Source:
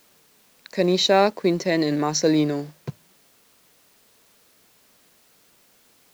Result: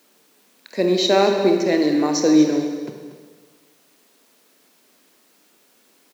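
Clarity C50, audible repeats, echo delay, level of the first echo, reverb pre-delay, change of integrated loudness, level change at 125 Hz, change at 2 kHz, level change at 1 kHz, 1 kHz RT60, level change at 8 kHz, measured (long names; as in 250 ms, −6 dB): 4.0 dB, 1, 236 ms, −13.5 dB, 25 ms, +3.0 dB, −3.0 dB, +0.5 dB, 0.0 dB, 1.5 s, can't be measured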